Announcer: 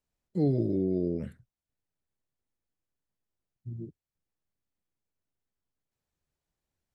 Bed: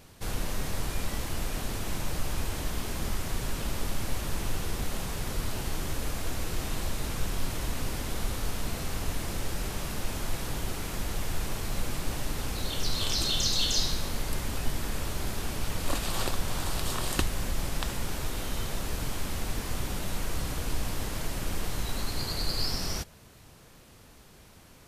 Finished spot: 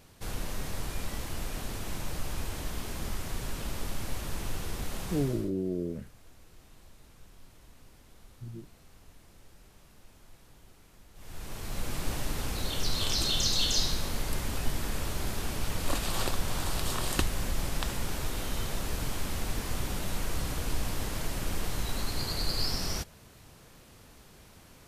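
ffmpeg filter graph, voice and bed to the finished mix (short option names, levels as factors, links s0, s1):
-filter_complex "[0:a]adelay=4750,volume=0.668[s0];[1:a]volume=9.44,afade=t=out:st=5.15:d=0.36:silence=0.1,afade=t=in:st=11.14:d=0.92:silence=0.0707946[s1];[s0][s1]amix=inputs=2:normalize=0"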